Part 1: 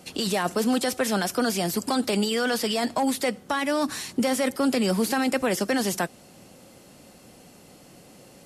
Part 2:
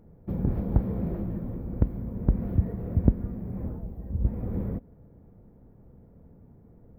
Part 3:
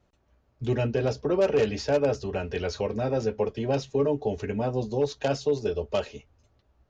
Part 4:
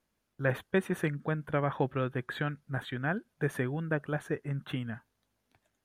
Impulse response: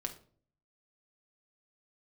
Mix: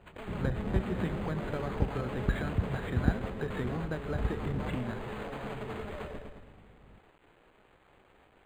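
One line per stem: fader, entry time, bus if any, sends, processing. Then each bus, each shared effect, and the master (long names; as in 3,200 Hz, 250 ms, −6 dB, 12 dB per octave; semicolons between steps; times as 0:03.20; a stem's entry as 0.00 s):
−12.0 dB, 0.00 s, bus A, no send, no echo send, wavefolder on the positive side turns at −27 dBFS; ring modulator with a square carrier 210 Hz
−7.0 dB, 0.00 s, no bus, no send, no echo send, mains hum 50 Hz, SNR 24 dB
−12.5 dB, 0.00 s, bus A, no send, echo send −4.5 dB, high-shelf EQ 5,200 Hz +6 dB; comparator with hysteresis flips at −38 dBFS
+1.0 dB, 0.00 s, bus A, send −12.5 dB, no echo send, downward compressor, threshold −34 dBFS, peak gain reduction 11.5 dB; leveller curve on the samples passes 1
bus A: 0.0 dB, mains-hum notches 50/100 Hz; downward compressor 1.5 to 1, threshold −42 dBFS, peak gain reduction 6 dB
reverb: on, RT60 0.50 s, pre-delay 5 ms
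echo: repeating echo 108 ms, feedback 54%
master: bit reduction 10 bits; linearly interpolated sample-rate reduction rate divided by 8×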